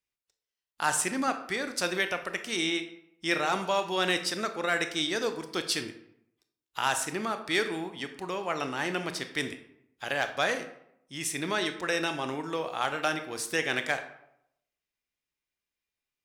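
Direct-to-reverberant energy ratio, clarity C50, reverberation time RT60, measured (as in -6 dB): 7.5 dB, 10.5 dB, 0.75 s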